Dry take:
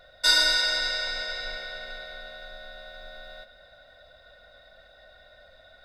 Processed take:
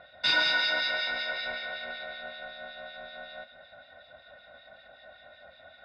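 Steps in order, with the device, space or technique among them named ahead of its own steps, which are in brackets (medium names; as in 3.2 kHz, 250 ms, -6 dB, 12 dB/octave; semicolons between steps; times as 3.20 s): guitar amplifier with harmonic tremolo (harmonic tremolo 5.3 Hz, crossover 2 kHz; saturation -21.5 dBFS, distortion -12 dB; cabinet simulation 100–3900 Hz, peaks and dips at 250 Hz +4 dB, 470 Hz -6 dB, 810 Hz +5 dB, 2.4 kHz +5 dB); trim +4.5 dB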